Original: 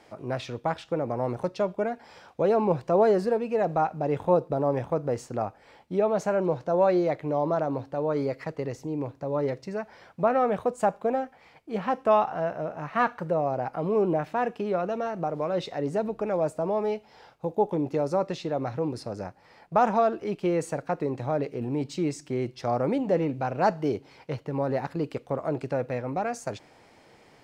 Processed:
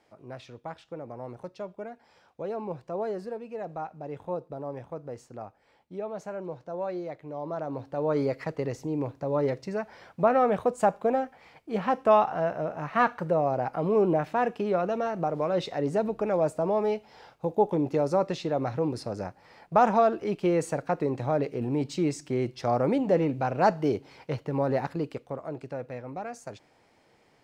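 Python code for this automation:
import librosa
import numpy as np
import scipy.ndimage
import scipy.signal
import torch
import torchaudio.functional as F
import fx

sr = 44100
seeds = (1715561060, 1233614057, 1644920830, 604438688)

y = fx.gain(x, sr, db=fx.line((7.31, -11.0), (8.13, 1.0), (24.83, 1.0), (25.45, -7.5)))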